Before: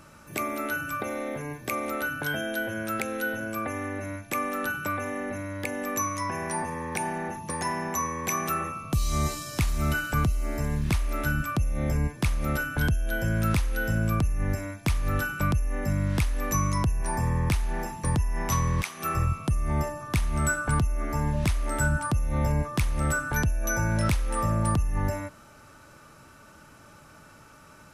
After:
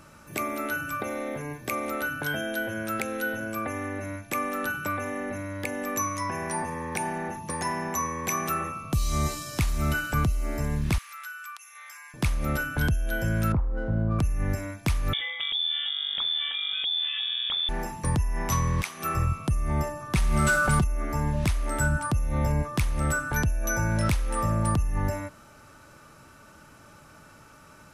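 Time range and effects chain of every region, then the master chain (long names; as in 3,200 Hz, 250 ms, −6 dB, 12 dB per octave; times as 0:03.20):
0:10.98–0:12.14: Butterworth high-pass 1,100 Hz + downward compressor 2 to 1, threshold −42 dBFS
0:13.52–0:14.19: low-pass filter 1,100 Hz 24 dB per octave + windowed peak hold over 3 samples
0:15.13–0:17.69: parametric band 820 Hz −6.5 dB 0.56 octaves + downward compressor 5 to 1, threshold −27 dBFS + voice inversion scrambler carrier 3,500 Hz
0:20.14–0:20.84: variable-slope delta modulation 64 kbit/s + comb filter 5.3 ms, depth 52% + envelope flattener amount 70%
whole clip: no processing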